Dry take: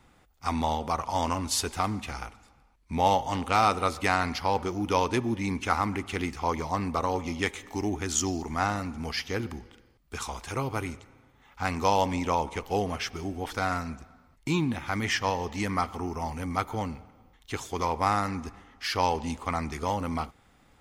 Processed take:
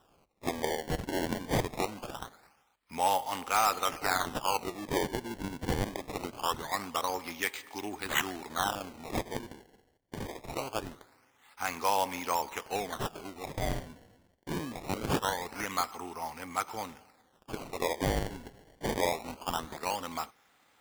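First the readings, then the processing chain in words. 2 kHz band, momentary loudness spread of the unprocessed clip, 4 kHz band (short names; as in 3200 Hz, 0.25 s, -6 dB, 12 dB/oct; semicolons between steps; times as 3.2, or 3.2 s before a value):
-3.0 dB, 11 LU, -2.5 dB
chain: HPF 920 Hz 6 dB/oct; decimation with a swept rate 20×, swing 160% 0.23 Hz; hard clip -18.5 dBFS, distortion -20 dB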